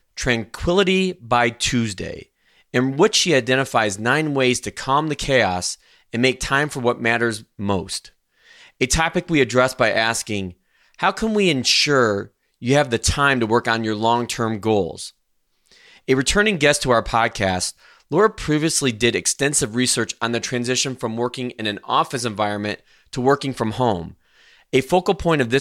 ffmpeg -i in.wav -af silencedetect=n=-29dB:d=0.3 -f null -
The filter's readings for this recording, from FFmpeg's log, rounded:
silence_start: 2.22
silence_end: 2.74 | silence_duration: 0.51
silence_start: 5.74
silence_end: 6.14 | silence_duration: 0.40
silence_start: 7.98
silence_end: 8.81 | silence_duration: 0.82
silence_start: 10.49
silence_end: 11.00 | silence_duration: 0.51
silence_start: 12.23
silence_end: 12.62 | silence_duration: 0.40
silence_start: 15.08
silence_end: 16.08 | silence_duration: 1.00
silence_start: 17.71
silence_end: 18.11 | silence_duration: 0.41
silence_start: 22.75
silence_end: 23.13 | silence_duration: 0.39
silence_start: 24.08
silence_end: 24.73 | silence_duration: 0.65